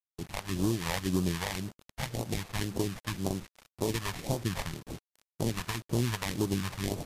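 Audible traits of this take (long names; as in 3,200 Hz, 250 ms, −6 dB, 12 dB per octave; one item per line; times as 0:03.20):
aliases and images of a low sample rate 1,400 Hz, jitter 20%
phaser sweep stages 2, 1.9 Hz, lowest notch 290–1,900 Hz
a quantiser's noise floor 8 bits, dither none
MP3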